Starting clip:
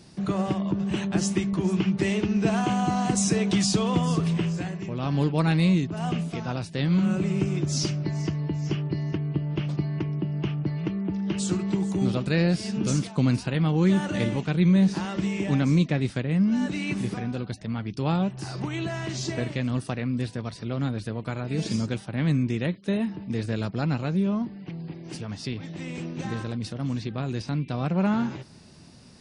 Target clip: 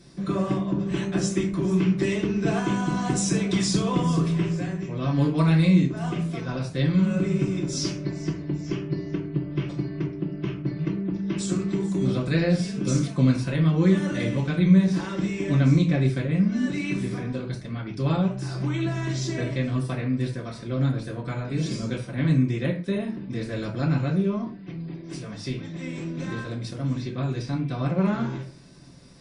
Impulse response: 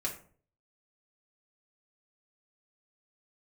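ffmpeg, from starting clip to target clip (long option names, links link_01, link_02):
-filter_complex "[1:a]atrim=start_sample=2205,atrim=end_sample=6615,asetrate=39690,aresample=44100[link_01];[0:a][link_01]afir=irnorm=-1:irlink=0,volume=-3.5dB"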